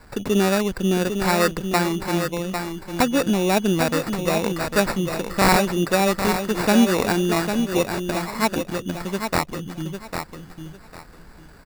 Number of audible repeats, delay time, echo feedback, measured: 3, 801 ms, 23%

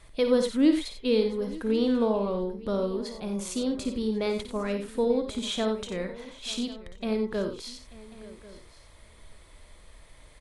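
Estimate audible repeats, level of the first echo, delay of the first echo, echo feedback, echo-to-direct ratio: 6, -8.5 dB, 55 ms, no regular repeats, -5.5 dB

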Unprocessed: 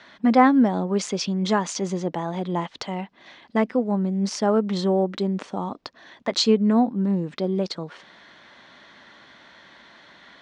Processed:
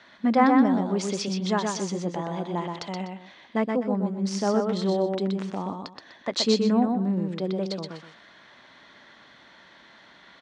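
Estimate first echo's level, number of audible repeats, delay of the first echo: -4.0 dB, 2, 124 ms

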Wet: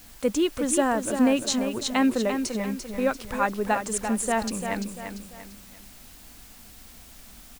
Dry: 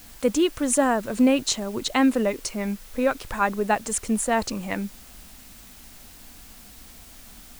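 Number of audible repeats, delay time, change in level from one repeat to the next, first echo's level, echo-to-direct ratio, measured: 3, 343 ms, -8.0 dB, -7.5 dB, -7.0 dB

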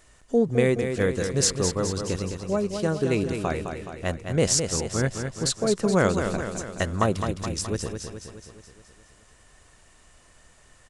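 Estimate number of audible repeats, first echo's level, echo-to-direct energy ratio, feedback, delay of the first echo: 6, -7.0 dB, -5.5 dB, 57%, 211 ms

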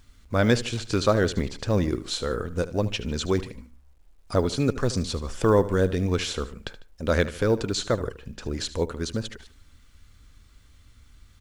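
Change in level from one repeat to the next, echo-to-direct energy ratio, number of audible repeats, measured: -7.0 dB, -14.5 dB, 2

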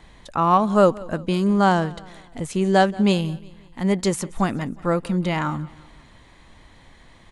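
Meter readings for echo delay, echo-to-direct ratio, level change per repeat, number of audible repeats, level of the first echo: 179 ms, -20.5 dB, -6.5 dB, 3, -21.5 dB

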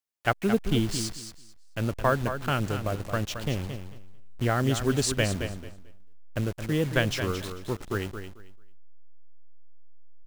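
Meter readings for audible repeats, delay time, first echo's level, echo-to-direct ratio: 2, 221 ms, -9.0 dB, -9.0 dB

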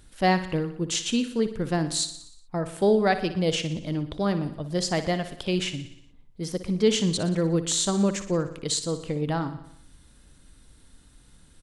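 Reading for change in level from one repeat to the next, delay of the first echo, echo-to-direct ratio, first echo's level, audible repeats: -4.5 dB, 60 ms, -10.5 dB, -12.5 dB, 6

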